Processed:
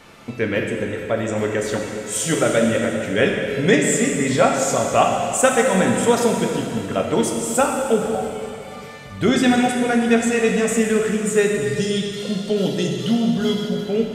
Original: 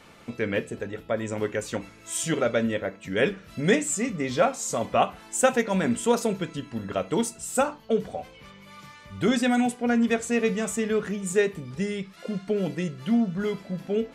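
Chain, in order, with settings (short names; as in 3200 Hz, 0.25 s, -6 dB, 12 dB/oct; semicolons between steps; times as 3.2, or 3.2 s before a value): 11.62–13.76 resonant high shelf 2800 Hz +6 dB, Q 3; plate-style reverb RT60 2.7 s, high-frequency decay 1×, DRR 1 dB; gain +5 dB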